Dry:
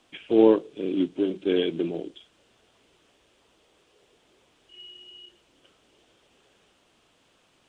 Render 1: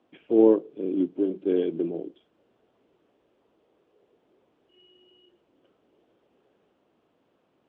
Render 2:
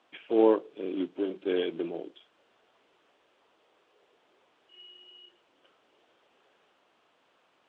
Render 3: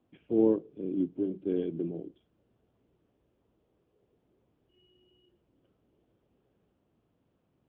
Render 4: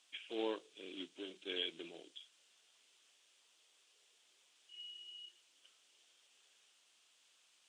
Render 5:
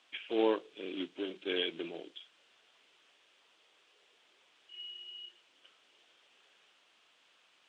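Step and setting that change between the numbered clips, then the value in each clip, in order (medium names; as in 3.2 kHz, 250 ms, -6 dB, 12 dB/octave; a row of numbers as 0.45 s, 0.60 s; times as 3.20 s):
band-pass filter, frequency: 340 Hz, 1 kHz, 110 Hz, 7.4 kHz, 2.5 kHz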